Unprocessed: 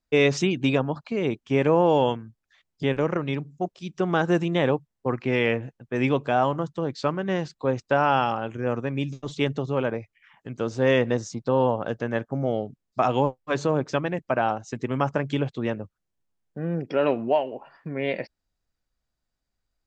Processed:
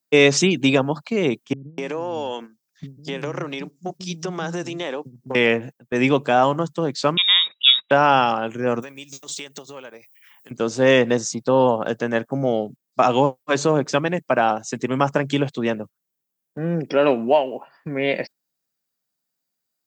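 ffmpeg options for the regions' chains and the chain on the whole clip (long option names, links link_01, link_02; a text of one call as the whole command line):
ffmpeg -i in.wav -filter_complex "[0:a]asettb=1/sr,asplit=3[link_01][link_02][link_03];[link_01]atrim=end=1.534[link_04];[link_02]atrim=start=1.53:end=5.35,asetpts=PTS-STARTPTS,afade=type=in:duration=0.004:curve=qsin,afade=type=out:start_time=3.816:duration=0.004:curve=qsin,equalizer=frequency=5400:width_type=o:width=0.7:gain=8,acompressor=threshold=-27dB:ratio=6:attack=3.2:release=140:knee=1:detection=peak,acrossover=split=220[link_05][link_06];[link_06]adelay=250[link_07];[link_05][link_07]amix=inputs=2:normalize=0,atrim=end_sample=168462[link_08];[link_03]atrim=start=5.346[link_09];[link_04][link_08]acrossfade=duration=0.004:curve1=hsin:curve2=qsin[link_10];[link_10][link_09]acrossfade=duration=0.004:curve1=qsin:curve2=hsin,asettb=1/sr,asplit=3[link_11][link_12][link_13];[link_11]atrim=end=7.174[link_14];[link_12]atrim=start=7.17:end=7.91,asetpts=PTS-STARTPTS,afade=type=in:duration=0.004:curve=qsin,afade=type=out:start_time=0.736:duration=0.004:curve=qsin,equalizer=frequency=1300:width_type=o:width=1.4:gain=5.5,lowpass=frequency=3300:width_type=q:width=0.5098,lowpass=frequency=3300:width_type=q:width=0.6013,lowpass=frequency=3300:width_type=q:width=0.9,lowpass=frequency=3300:width_type=q:width=2.563,afreqshift=-3900[link_15];[link_13]atrim=start=7.906[link_16];[link_14][link_15]acrossfade=duration=0.004:curve1=hsin:curve2=qsin[link_17];[link_17][link_16]acrossfade=duration=0.004:curve1=qsin:curve2=hsin,asettb=1/sr,asplit=3[link_18][link_19][link_20];[link_18]atrim=end=8.824[link_21];[link_19]atrim=start=8.82:end=10.51,asetpts=PTS-STARTPTS,afade=type=in:duration=0.004:curve=qsin,afade=type=out:start_time=1.686:duration=0.004:curve=qsin,aemphasis=mode=production:type=riaa,acompressor=threshold=-38dB:ratio=6:attack=3.2:release=140:knee=1:detection=peak[link_22];[link_20]atrim=start=10.506[link_23];[link_21][link_22]acrossfade=duration=0.004:curve1=hsin:curve2=qsin[link_24];[link_24][link_23]acrossfade=duration=0.004:curve1=qsin:curve2=hsin,highpass=frequency=140:width=0.5412,highpass=frequency=140:width=1.3066,aemphasis=mode=production:type=50fm,agate=range=-7dB:threshold=-41dB:ratio=16:detection=peak,volume=5.5dB" out.wav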